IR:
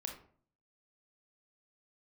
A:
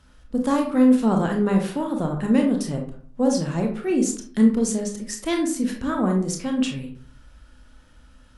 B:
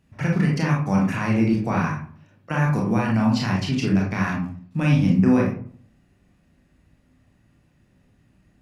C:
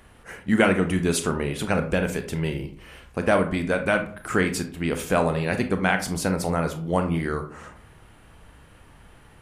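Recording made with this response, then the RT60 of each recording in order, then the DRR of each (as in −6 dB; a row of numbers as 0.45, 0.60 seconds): A; 0.50, 0.50, 0.50 seconds; 2.0, −2.0, 7.0 decibels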